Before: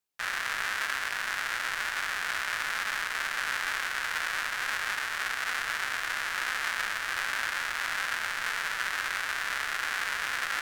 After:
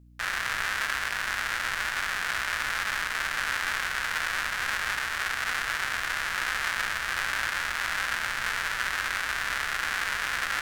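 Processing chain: bass shelf 130 Hz +7.5 dB; hum 60 Hz, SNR 24 dB; trim +2 dB

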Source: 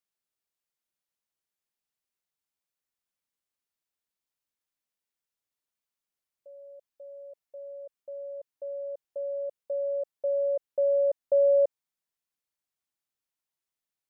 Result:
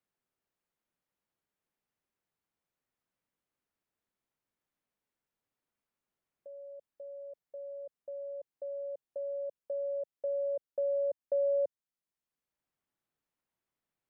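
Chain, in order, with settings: bass shelf 460 Hz +7 dB; three bands compressed up and down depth 40%; trim -8.5 dB

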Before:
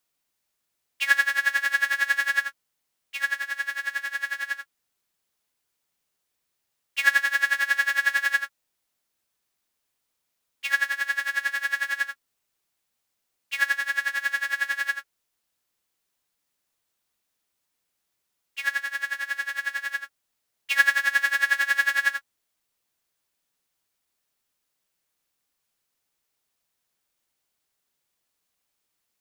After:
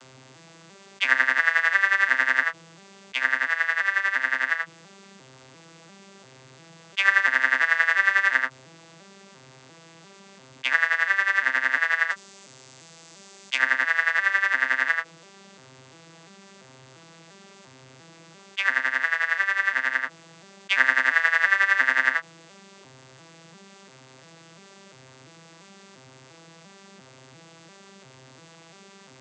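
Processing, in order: vocoder on a broken chord major triad, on C3, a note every 346 ms; 12.10–13.58 s: tone controls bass -3 dB, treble +9 dB; level flattener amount 50%

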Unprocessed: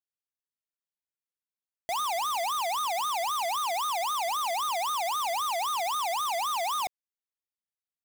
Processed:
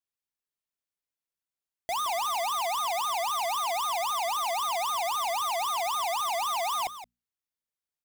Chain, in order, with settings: bass shelf 120 Hz +4.5 dB; hum notches 60/120/180/240 Hz; delay 171 ms -12.5 dB

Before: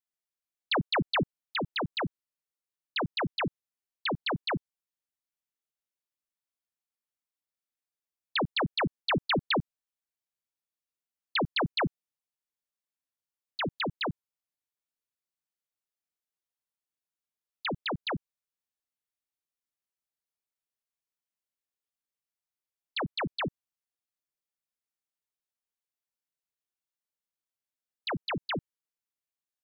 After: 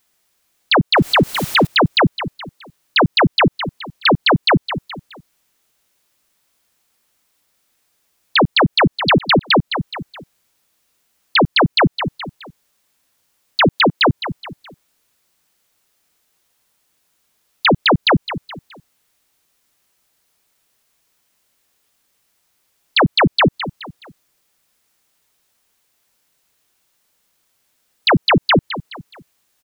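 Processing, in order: 0.97–1.67 s: jump at every zero crossing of -47.5 dBFS; feedback delay 211 ms, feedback 37%, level -20.5 dB; compression 2:1, threshold -36 dBFS, peak gain reduction 6.5 dB; 13.70–14.10 s: high-pass 200 Hz; loudness maximiser +34.5 dB; trim -7 dB

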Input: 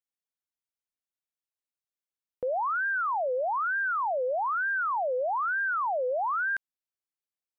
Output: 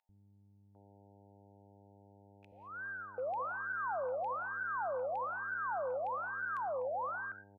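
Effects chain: rattle on loud lows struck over -48 dBFS, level -36 dBFS; gated-style reverb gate 240 ms rising, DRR 11 dB; gate with hold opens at -25 dBFS; mains buzz 100 Hz, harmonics 9, -53 dBFS -3 dB/octave; three bands offset in time highs, lows, mids 90/750 ms, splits 250/1600 Hz; trim -8 dB

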